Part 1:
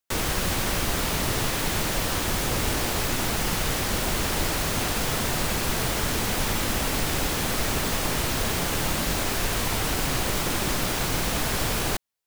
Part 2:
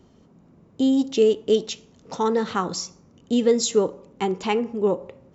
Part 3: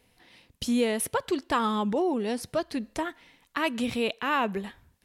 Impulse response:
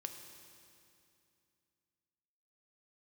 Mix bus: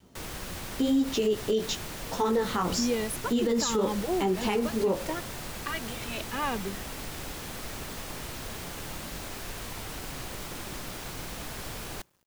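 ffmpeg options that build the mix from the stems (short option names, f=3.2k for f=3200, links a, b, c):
-filter_complex "[0:a]adelay=50,volume=-13dB,asplit=2[a][b];[b]volume=-22dB[c];[1:a]adynamicequalizer=threshold=0.0355:dfrequency=330:dqfactor=0.94:tfrequency=330:tqfactor=0.94:attack=5:release=100:ratio=0.375:range=2:mode=cutabove:tftype=bell,flanger=delay=15:depth=7.7:speed=0.95,volume=2.5dB,asplit=2[d][e];[2:a]asplit=2[f][g];[g]adelay=2.1,afreqshift=-1.1[h];[f][h]amix=inputs=2:normalize=1,adelay=2100,volume=-2.5dB[i];[e]apad=whole_len=542980[j];[a][j]sidechaincompress=threshold=-21dB:ratio=8:attack=6.2:release=101[k];[3:a]atrim=start_sample=2205[l];[c][l]afir=irnorm=-1:irlink=0[m];[k][d][i][m]amix=inputs=4:normalize=0,acrusher=bits=10:mix=0:aa=0.000001,alimiter=limit=-18dB:level=0:latency=1:release=66"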